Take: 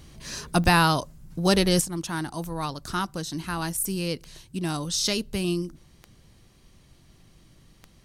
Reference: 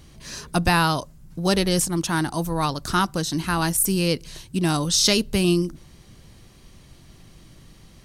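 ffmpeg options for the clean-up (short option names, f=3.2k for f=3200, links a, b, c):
-af "adeclick=t=4,asetnsamples=n=441:p=0,asendcmd='1.81 volume volume 7dB',volume=0dB"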